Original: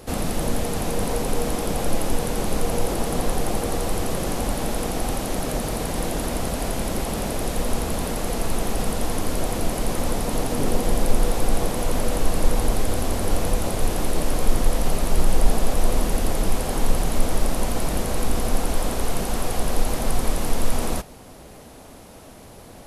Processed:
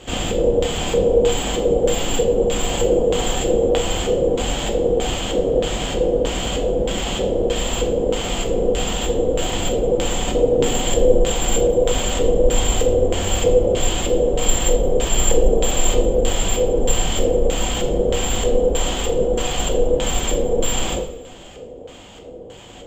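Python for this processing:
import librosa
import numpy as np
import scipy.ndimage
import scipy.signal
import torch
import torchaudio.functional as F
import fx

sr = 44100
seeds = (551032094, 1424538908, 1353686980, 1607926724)

y = (np.kron(scipy.signal.resample_poly(x, 1, 6), np.eye(6)[0]) * 6)[:len(x)]
y = fx.filter_lfo_lowpass(y, sr, shape='square', hz=1.6, low_hz=480.0, high_hz=3200.0, q=6.7)
y = fx.rev_double_slope(y, sr, seeds[0], early_s=0.49, late_s=1.8, knee_db=-18, drr_db=1.5)
y = y * 10.0 ** (-1.0 / 20.0)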